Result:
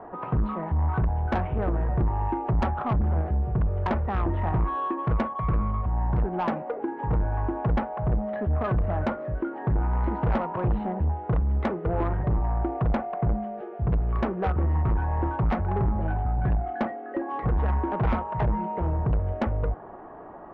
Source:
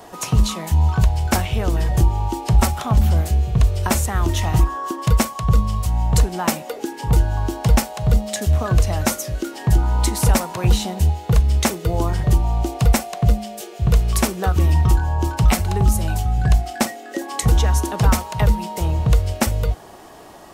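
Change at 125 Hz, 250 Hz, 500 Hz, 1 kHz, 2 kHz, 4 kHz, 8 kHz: −8.0 dB, −5.0 dB, −3.5 dB, −3.5 dB, −9.0 dB, below −20 dB, below −40 dB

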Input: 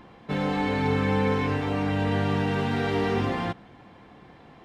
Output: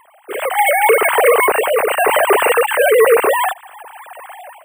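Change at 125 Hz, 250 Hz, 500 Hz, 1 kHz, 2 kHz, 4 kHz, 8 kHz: below −25 dB, −6.5 dB, +16.0 dB, +15.5 dB, +16.5 dB, +11.5 dB, can't be measured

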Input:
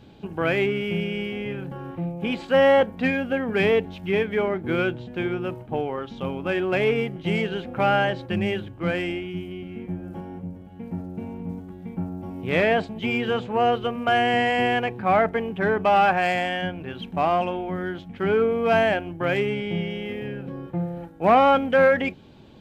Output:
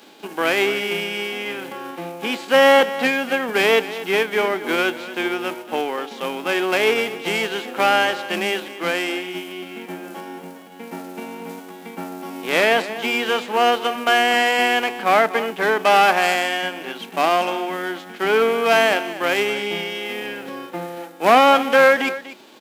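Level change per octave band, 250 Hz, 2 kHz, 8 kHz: −0.5 dB, +7.0 dB, can't be measured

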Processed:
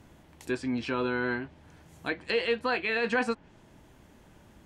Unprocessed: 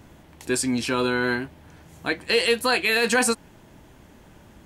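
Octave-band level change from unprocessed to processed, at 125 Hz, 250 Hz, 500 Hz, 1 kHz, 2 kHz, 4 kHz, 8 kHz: −6.0 dB, −6.0 dB, −6.0 dB, −6.0 dB, −7.0 dB, −12.0 dB, below −20 dB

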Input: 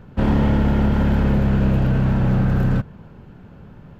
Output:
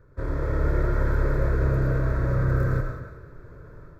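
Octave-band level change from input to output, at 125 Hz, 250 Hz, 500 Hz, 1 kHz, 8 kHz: −6.0 dB, −13.5 dB, −2.5 dB, −6.0 dB, can't be measured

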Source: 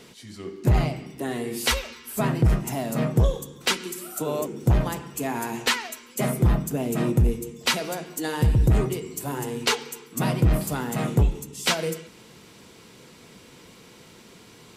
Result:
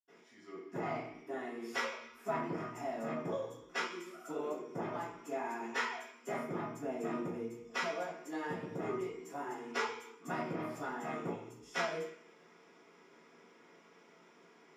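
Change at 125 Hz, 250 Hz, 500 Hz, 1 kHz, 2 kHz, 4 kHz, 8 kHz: −26.5, −14.5, −9.5, −8.0, −9.5, −19.0, −21.5 decibels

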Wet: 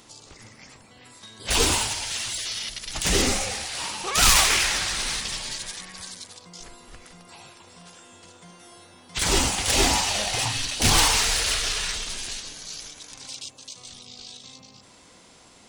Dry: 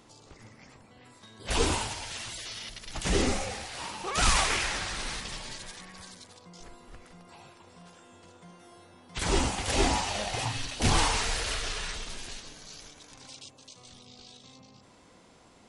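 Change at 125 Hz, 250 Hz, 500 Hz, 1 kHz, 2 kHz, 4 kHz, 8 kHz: +2.0, +2.0, +2.5, +3.5, +6.5, +9.0, +10.5 decibels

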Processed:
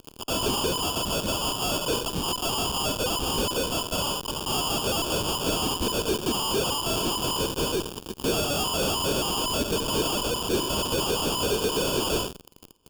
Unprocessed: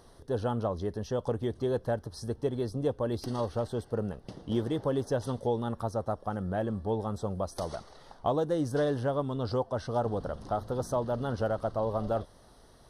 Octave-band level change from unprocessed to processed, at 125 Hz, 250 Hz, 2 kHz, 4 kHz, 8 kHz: −0.5, +3.0, +13.0, +23.5, +23.5 decibels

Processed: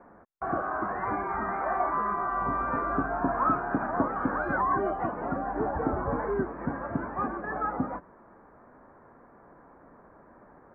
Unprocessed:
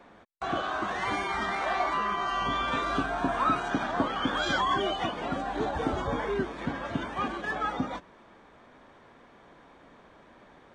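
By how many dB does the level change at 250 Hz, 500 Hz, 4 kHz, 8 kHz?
+1.0 dB, +1.0 dB, below −35 dB, below −30 dB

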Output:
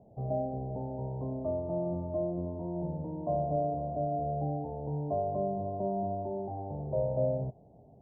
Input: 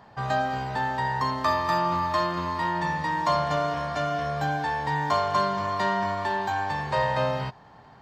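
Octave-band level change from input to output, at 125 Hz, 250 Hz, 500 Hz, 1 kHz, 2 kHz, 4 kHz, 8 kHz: −2.0 dB, −2.5 dB, −2.5 dB, −14.0 dB, below −40 dB, below −40 dB, below −35 dB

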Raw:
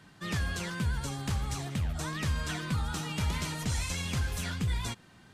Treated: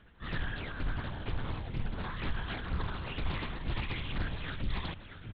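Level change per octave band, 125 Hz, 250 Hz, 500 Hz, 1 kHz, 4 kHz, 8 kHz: −5.5 dB, −5.0 dB, −1.5 dB, −2.5 dB, −5.0 dB, below −40 dB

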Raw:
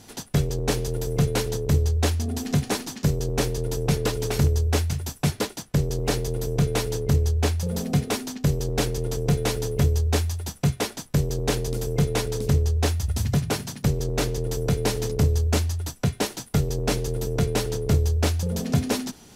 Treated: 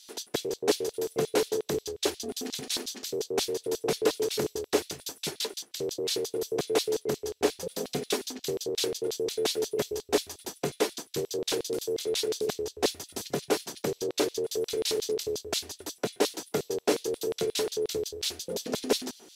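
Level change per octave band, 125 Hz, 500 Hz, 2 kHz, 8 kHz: −24.0, 0.0, −5.0, −2.0 decibels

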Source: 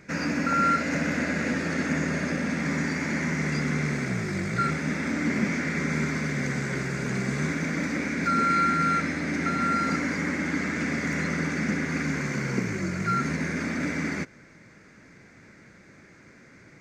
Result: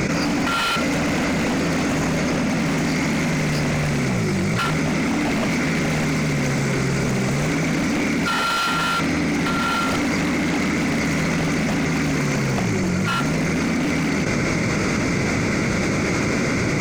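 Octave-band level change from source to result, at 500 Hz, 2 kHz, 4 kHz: +9.0, +5.0, +13.0 decibels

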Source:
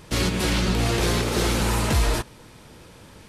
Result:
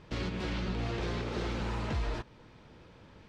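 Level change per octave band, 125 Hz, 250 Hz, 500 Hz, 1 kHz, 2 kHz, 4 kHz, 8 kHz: −11.5, −11.5, −11.5, −12.0, −13.0, −16.0, −25.5 decibels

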